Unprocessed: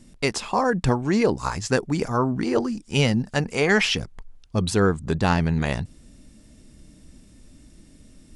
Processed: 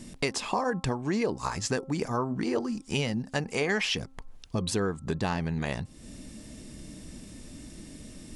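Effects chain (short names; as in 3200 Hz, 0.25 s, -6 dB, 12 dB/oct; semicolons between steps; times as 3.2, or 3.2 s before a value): compressor 3:1, threshold -38 dBFS, peak gain reduction 17 dB; low shelf 84 Hz -8.5 dB; notch 1400 Hz, Q 15; de-hum 266 Hz, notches 5; gain +8 dB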